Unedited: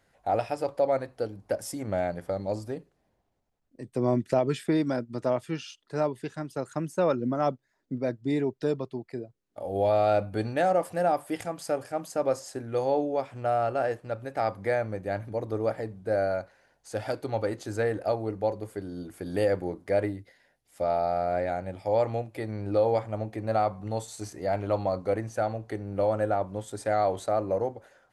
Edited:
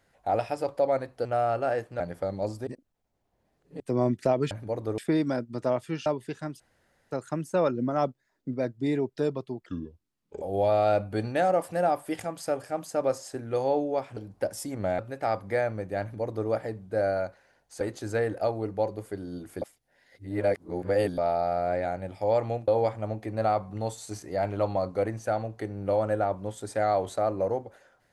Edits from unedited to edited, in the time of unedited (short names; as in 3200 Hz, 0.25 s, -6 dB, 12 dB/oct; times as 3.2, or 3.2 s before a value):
1.25–2.07 swap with 13.38–14.13
2.74–3.87 reverse
5.66–6.01 cut
6.55 insert room tone 0.51 s
9.1–9.63 speed 70%
15.16–15.63 copy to 4.58
16.95–17.45 cut
19.26–20.82 reverse
22.32–22.78 cut